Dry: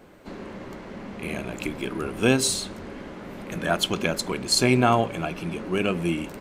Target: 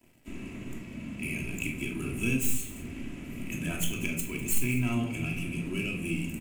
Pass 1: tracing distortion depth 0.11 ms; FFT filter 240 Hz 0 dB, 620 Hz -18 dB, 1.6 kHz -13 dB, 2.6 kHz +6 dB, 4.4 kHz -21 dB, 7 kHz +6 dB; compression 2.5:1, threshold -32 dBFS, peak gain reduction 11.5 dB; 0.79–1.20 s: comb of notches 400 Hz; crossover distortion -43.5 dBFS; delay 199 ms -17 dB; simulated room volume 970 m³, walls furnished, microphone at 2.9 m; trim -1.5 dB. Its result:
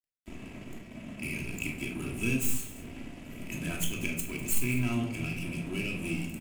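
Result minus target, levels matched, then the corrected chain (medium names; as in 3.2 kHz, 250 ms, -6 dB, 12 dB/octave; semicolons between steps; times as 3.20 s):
crossover distortion: distortion +9 dB
tracing distortion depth 0.11 ms; FFT filter 240 Hz 0 dB, 620 Hz -18 dB, 1.6 kHz -13 dB, 2.6 kHz +6 dB, 4.4 kHz -21 dB, 7 kHz +6 dB; compression 2.5:1, threshold -32 dBFS, peak gain reduction 11.5 dB; 0.79–1.20 s: comb of notches 400 Hz; crossover distortion -53 dBFS; delay 199 ms -17 dB; simulated room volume 970 m³, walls furnished, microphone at 2.9 m; trim -1.5 dB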